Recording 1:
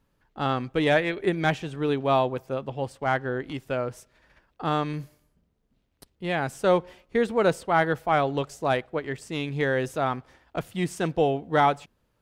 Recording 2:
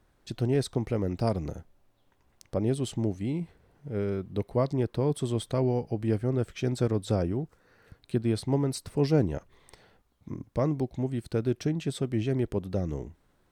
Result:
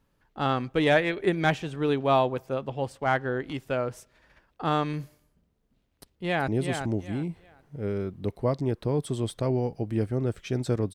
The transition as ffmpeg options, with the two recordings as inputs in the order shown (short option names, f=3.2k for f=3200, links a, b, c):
-filter_complex "[0:a]apad=whole_dur=10.94,atrim=end=10.94,atrim=end=6.482[a];[1:a]atrim=start=2.598:end=7.06[b];[a][b]acrossfade=d=0.004:c1=hsin:c2=hsin,asplit=2[c][d];[d]afade=t=in:st=5.89:d=0.01,afade=t=out:st=6.48:d=0.01,aecho=0:1:380|760|1140:0.501187|0.125297|0.0313242[e];[c][e]amix=inputs=2:normalize=0"